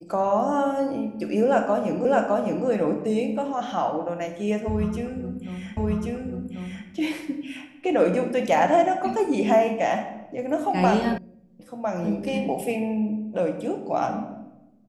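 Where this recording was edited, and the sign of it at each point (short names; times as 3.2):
2.05 repeat of the last 0.61 s
5.77 repeat of the last 1.09 s
11.18 sound cut off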